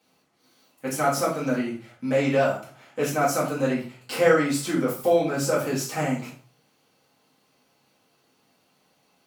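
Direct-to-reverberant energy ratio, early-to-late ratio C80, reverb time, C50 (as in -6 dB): -8.0 dB, 11.0 dB, 0.45 s, 6.5 dB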